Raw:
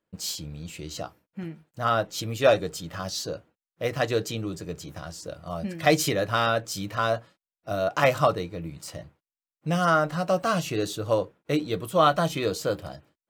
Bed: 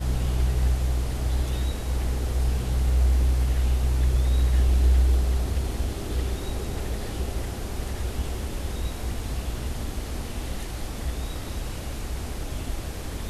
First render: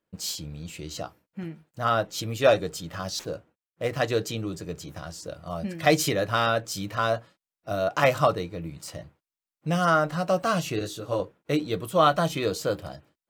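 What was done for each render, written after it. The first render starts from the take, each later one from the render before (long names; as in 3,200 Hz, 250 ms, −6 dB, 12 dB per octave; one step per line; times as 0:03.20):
0:03.19–0:03.93: running median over 9 samples
0:10.79–0:11.20: micro pitch shift up and down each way 22 cents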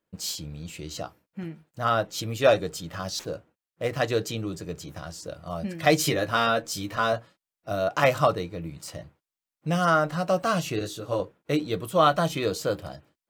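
0:06.02–0:07.13: double-tracking delay 13 ms −6 dB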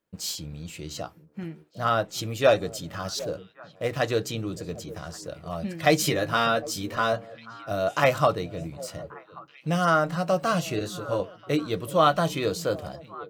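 echo through a band-pass that steps 378 ms, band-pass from 170 Hz, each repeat 1.4 octaves, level −12 dB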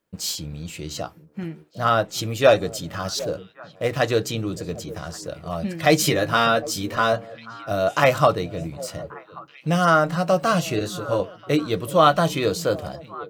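level +4.5 dB
brickwall limiter −3 dBFS, peak gain reduction 2.5 dB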